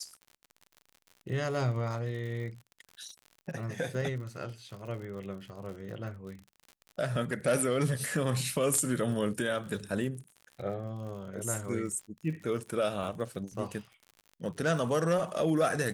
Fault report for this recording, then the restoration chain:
surface crackle 57 per second −41 dBFS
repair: click removal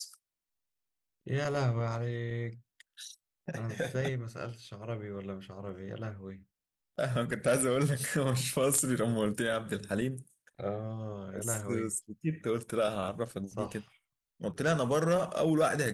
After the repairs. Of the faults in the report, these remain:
none of them is left

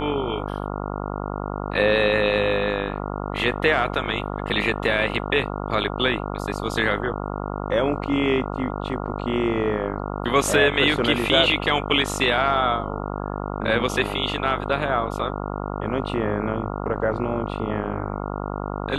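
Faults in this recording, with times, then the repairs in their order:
mains buzz 50 Hz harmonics 28 −29 dBFS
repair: hum removal 50 Hz, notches 28

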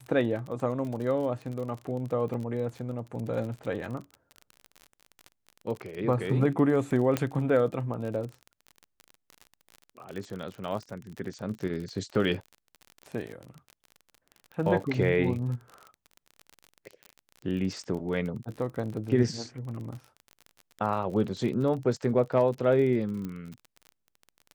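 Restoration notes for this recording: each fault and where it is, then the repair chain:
surface crackle 37 per second −35 dBFS
0:07.17: click −12 dBFS
0:23.25: click −24 dBFS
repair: click removal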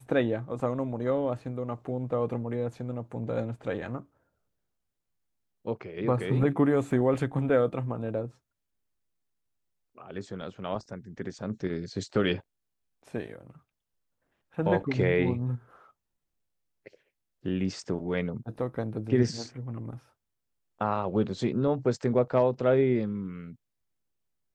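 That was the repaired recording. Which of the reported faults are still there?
0:07.17: click

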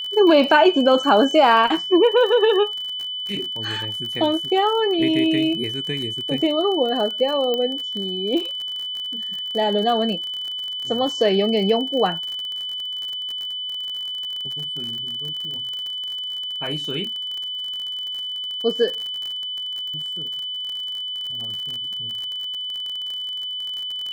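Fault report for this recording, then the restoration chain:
surface crackle 45 per second −27 dBFS
whistle 3,000 Hz −26 dBFS
0:07.54: click −12 dBFS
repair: click removal
notch filter 3,000 Hz, Q 30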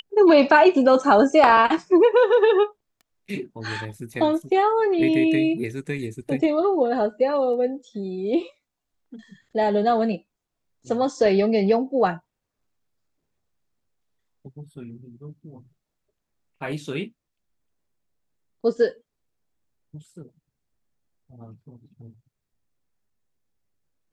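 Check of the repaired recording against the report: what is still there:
0:07.54: click

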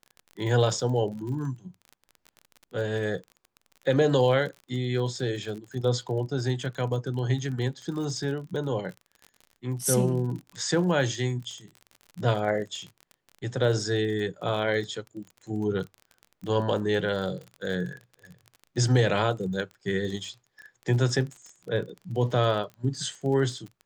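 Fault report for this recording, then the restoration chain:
surface crackle 31 per second −35 dBFS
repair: click removal

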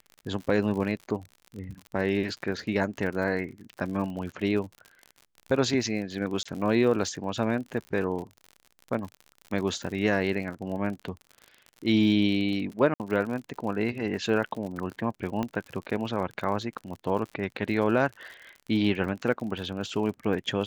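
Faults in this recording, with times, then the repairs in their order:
surface crackle 55 per second −35 dBFS
0:06.43–0:06.46: drop-out 25 ms
0:12.94–0:13.00: drop-out 58 ms
0:15.43: click −17 dBFS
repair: click removal
repair the gap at 0:06.43, 25 ms
repair the gap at 0:12.94, 58 ms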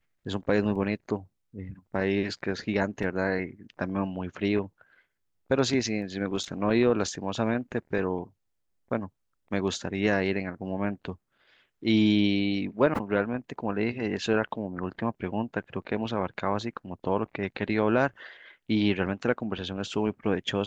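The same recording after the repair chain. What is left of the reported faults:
none of them is left

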